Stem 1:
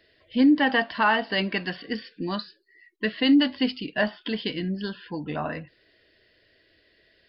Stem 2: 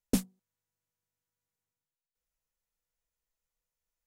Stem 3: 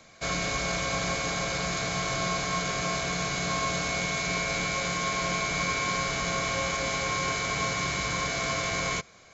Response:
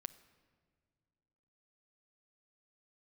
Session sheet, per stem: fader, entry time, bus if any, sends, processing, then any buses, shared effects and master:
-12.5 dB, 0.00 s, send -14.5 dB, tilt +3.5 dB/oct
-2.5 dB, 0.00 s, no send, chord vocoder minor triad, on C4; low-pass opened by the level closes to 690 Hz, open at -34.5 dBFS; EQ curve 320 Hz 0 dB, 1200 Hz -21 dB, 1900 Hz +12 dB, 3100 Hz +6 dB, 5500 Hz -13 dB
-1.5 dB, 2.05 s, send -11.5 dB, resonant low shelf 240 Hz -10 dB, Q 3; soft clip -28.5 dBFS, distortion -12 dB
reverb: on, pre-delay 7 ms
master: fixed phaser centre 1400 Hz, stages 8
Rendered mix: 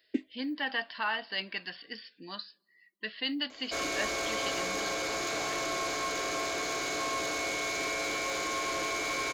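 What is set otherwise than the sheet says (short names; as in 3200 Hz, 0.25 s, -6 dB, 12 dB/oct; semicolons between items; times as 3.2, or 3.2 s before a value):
stem 3: entry 2.05 s -> 3.50 s; master: missing fixed phaser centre 1400 Hz, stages 8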